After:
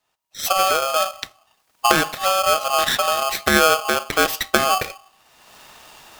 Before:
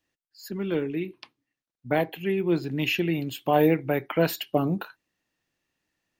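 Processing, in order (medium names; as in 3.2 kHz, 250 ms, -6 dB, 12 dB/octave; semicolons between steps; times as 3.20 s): recorder AGC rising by 32 dB/s; on a send at -22 dB: bass shelf 160 Hz +11 dB + reverberation RT60 0.50 s, pre-delay 8 ms; on the sum: polarity switched at an audio rate 950 Hz; trim +4.5 dB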